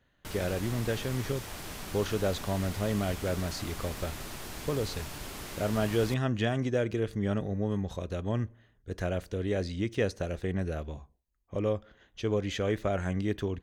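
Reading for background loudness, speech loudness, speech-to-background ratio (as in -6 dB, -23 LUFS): -41.0 LUFS, -32.5 LUFS, 8.5 dB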